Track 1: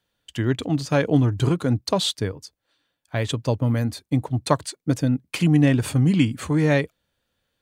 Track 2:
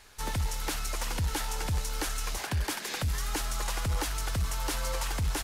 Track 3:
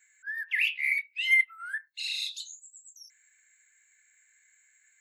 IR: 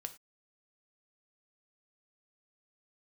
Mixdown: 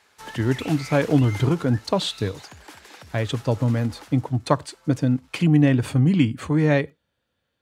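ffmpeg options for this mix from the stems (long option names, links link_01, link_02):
-filter_complex "[0:a]volume=-1.5dB,asplit=2[link_01][link_02];[link_02]volume=-9dB[link_03];[1:a]highpass=frequency=260:poles=1,volume=-1.5dB,afade=type=out:start_time=1.18:duration=0.47:silence=0.473151,afade=type=out:start_time=3.96:duration=0.29:silence=0.251189,asplit=2[link_04][link_05];[link_05]volume=-10.5dB[link_06];[2:a]asoftclip=type=tanh:threshold=-30dB,volume=-6dB[link_07];[3:a]atrim=start_sample=2205[link_08];[link_03][link_08]afir=irnorm=-1:irlink=0[link_09];[link_06]aecho=0:1:221:1[link_10];[link_01][link_04][link_07][link_09][link_10]amix=inputs=5:normalize=0,highpass=58,highshelf=frequency=5100:gain=-9.5"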